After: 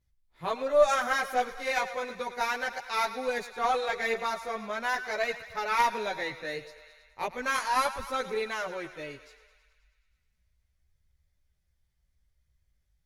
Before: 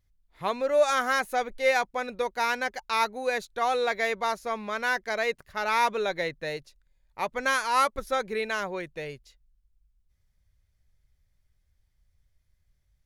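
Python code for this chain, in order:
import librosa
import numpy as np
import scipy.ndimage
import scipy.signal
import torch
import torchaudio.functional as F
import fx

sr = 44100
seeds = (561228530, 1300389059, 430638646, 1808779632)

y = fx.echo_thinned(x, sr, ms=106, feedback_pct=72, hz=490.0, wet_db=-13.0)
y = fx.chorus_voices(y, sr, voices=2, hz=0.36, base_ms=15, depth_ms=3.4, mix_pct=55)
y = fx.cheby_harmonics(y, sr, harmonics=(2,), levels_db=(-11,), full_scale_db=-12.5)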